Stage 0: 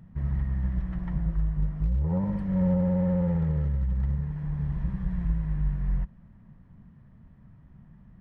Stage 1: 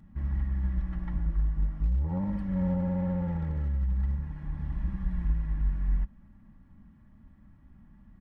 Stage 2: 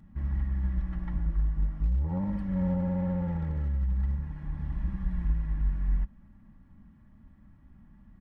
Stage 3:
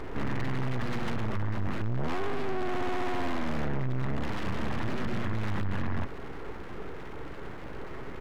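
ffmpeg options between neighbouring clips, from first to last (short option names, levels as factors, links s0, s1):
-af "equalizer=f=520:t=o:w=0.24:g=-10.5,aecho=1:1:3.6:0.61,volume=0.75"
-af anull
-filter_complex "[0:a]alimiter=level_in=1.5:limit=0.0631:level=0:latency=1:release=46,volume=0.668,asplit=2[s0][s1];[s1]highpass=f=720:p=1,volume=44.7,asoftclip=type=tanh:threshold=0.0422[s2];[s0][s2]amix=inputs=2:normalize=0,lowpass=f=1300:p=1,volume=0.501,aeval=exprs='abs(val(0))':c=same,volume=2.11"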